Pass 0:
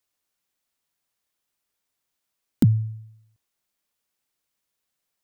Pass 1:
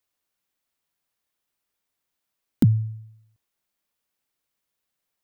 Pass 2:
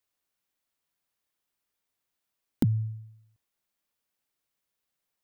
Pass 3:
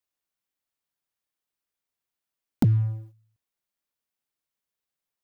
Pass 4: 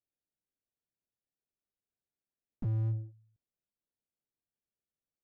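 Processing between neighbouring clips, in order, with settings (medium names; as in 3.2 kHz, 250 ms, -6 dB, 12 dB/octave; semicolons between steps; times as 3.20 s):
peaking EQ 7 kHz -3 dB 1.7 oct
compression 4:1, threshold -19 dBFS, peak gain reduction 6 dB; trim -2.5 dB
waveshaping leveller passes 2; trim -1 dB
local Wiener filter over 41 samples; slew-rate limiter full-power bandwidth 3.9 Hz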